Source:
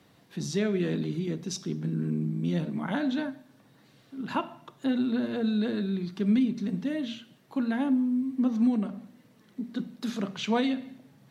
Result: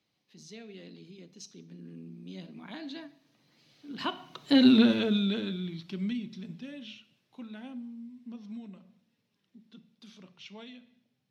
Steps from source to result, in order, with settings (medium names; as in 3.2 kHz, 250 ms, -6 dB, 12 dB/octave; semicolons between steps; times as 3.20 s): Doppler pass-by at 4.72 s, 24 m/s, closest 3.9 m; high-order bell 3.7 kHz +9 dB; trim +8.5 dB